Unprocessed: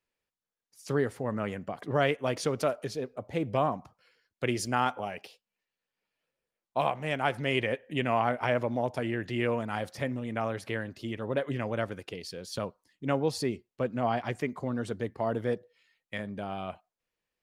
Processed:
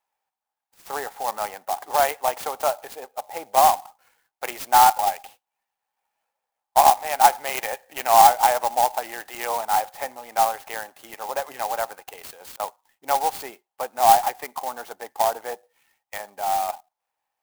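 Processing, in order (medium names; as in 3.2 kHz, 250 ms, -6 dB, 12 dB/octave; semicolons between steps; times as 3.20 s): 12.18–12.60 s: compressor with a negative ratio -42 dBFS, ratio -0.5; resonant high-pass 810 Hz, resonance Q 9.2; sampling jitter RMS 0.055 ms; trim +2 dB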